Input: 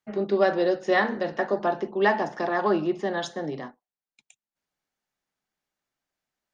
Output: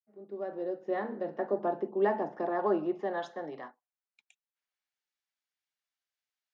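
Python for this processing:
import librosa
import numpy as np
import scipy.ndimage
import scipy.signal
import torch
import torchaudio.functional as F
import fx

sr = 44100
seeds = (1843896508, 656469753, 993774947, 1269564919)

y = fx.fade_in_head(x, sr, length_s=1.61)
y = fx.filter_sweep_bandpass(y, sr, from_hz=390.0, to_hz=3500.0, start_s=2.33, end_s=5.11, q=0.75)
y = F.gain(torch.from_numpy(y), -3.5).numpy()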